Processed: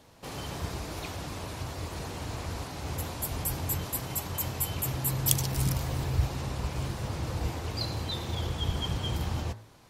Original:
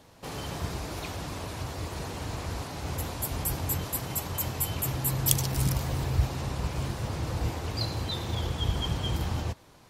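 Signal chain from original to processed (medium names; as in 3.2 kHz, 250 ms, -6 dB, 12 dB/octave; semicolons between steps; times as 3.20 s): de-hum 54.46 Hz, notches 37; trim -1 dB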